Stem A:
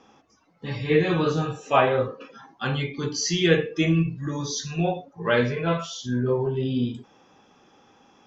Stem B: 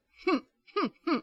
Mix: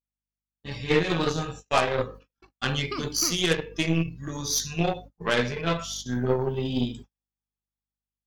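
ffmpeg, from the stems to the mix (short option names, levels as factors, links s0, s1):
-filter_complex "[0:a]aeval=exprs='0.531*(cos(1*acos(clip(val(0)/0.531,-1,1)))-cos(1*PI/2))+0.0299*(cos(6*acos(clip(val(0)/0.531,-1,1)))-cos(6*PI/2))+0.0376*(cos(7*acos(clip(val(0)/0.531,-1,1)))-cos(7*PI/2))':c=same,dynaudnorm=f=230:g=5:m=2.37,aeval=exprs='val(0)+0.00891*(sin(2*PI*50*n/s)+sin(2*PI*2*50*n/s)/2+sin(2*PI*3*50*n/s)/3+sin(2*PI*4*50*n/s)/4+sin(2*PI*5*50*n/s)/5)':c=same,volume=0.562,asplit=2[s0][s1];[1:a]acompressor=threshold=0.0398:ratio=16,adelay=2150,volume=0.841[s2];[s1]apad=whole_len=148689[s3];[s2][s3]sidechaingate=range=0.0224:threshold=0.00708:ratio=16:detection=peak[s4];[s0][s4]amix=inputs=2:normalize=0,agate=range=0.00398:threshold=0.01:ratio=16:detection=peak,aemphasis=mode=production:type=75kf,alimiter=limit=0.335:level=0:latency=1:release=182"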